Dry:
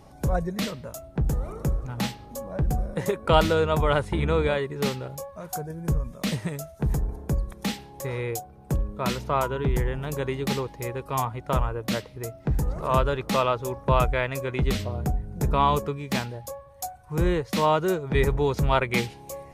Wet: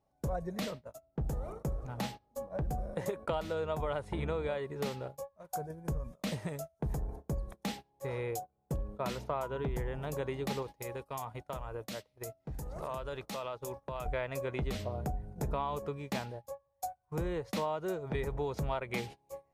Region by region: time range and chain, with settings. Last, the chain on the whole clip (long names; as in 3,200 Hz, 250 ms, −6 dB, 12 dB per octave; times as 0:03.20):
0:10.62–0:14.06: high-shelf EQ 2,800 Hz +8.5 dB + downward compressor 12 to 1, threshold −29 dBFS
whole clip: noise gate −35 dBFS, range −22 dB; parametric band 660 Hz +6.5 dB 1.1 octaves; downward compressor 10 to 1, threshold −22 dBFS; level −8.5 dB